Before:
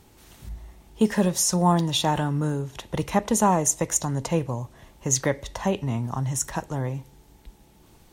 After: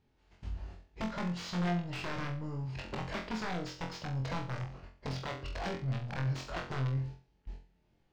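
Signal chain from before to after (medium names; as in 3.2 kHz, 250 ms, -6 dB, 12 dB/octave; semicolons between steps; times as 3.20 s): gate -46 dBFS, range -19 dB; compression 16:1, threshold -30 dBFS, peak gain reduction 16.5 dB; saturation -30.5 dBFS, distortion -13 dB; formant shift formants -5 st; integer overflow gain 31.5 dB; distance through air 180 m; on a send: flutter echo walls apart 3.9 m, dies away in 0.38 s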